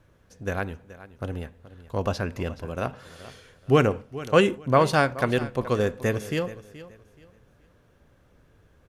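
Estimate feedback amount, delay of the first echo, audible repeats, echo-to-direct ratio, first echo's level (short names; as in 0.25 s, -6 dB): 27%, 0.426 s, 2, -16.0 dB, -16.5 dB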